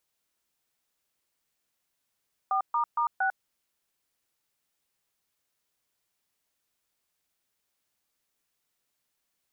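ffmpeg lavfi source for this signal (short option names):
-f lavfi -i "aevalsrc='0.0501*clip(min(mod(t,0.231),0.098-mod(t,0.231))/0.002,0,1)*(eq(floor(t/0.231),0)*(sin(2*PI*770*mod(t,0.231))+sin(2*PI*1209*mod(t,0.231)))+eq(floor(t/0.231),1)*(sin(2*PI*941*mod(t,0.231))+sin(2*PI*1209*mod(t,0.231)))+eq(floor(t/0.231),2)*(sin(2*PI*941*mod(t,0.231))+sin(2*PI*1209*mod(t,0.231)))+eq(floor(t/0.231),3)*(sin(2*PI*770*mod(t,0.231))+sin(2*PI*1477*mod(t,0.231))))':d=0.924:s=44100"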